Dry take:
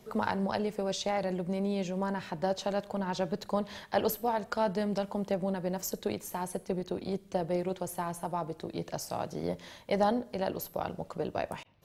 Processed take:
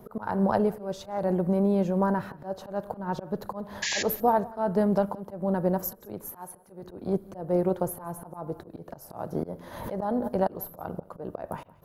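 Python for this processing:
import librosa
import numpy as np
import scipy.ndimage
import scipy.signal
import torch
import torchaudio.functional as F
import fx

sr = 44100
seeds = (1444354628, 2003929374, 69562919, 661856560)

y = fx.low_shelf(x, sr, hz=460.0, db=-11.0, at=(6.3, 6.83))
y = fx.auto_swell(y, sr, attack_ms=249.0)
y = fx.spec_paint(y, sr, seeds[0], shape='noise', start_s=3.82, length_s=0.21, low_hz=1600.0, high_hz=7300.0, level_db=-23.0)
y = fx.band_shelf(y, sr, hz=4100.0, db=-15.5, octaves=2.4)
y = y + 10.0 ** (-22.5 / 20.0) * np.pad(y, (int(176 * sr / 1000.0), 0))[:len(y)]
y = fx.pre_swell(y, sr, db_per_s=46.0, at=(9.71, 10.27), fade=0.02)
y = y * 10.0 ** (8.0 / 20.0)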